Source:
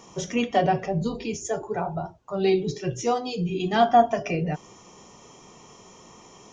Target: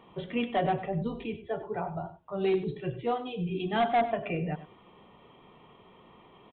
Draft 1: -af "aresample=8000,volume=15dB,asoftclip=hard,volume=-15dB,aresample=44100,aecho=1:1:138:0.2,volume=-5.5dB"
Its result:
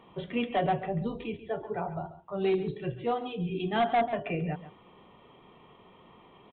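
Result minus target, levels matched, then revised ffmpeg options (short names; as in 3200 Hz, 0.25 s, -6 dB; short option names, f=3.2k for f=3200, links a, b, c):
echo 41 ms late
-af "aresample=8000,volume=15dB,asoftclip=hard,volume=-15dB,aresample=44100,aecho=1:1:97:0.2,volume=-5.5dB"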